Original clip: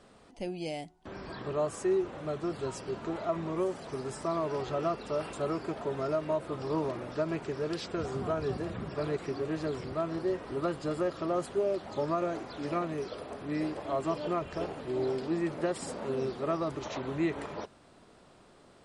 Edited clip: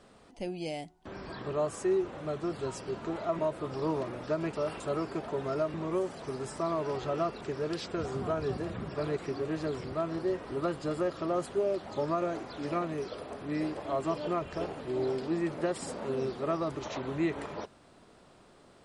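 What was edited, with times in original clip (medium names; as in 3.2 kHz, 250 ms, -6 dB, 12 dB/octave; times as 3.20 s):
3.39–5.06 s: swap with 6.27–7.41 s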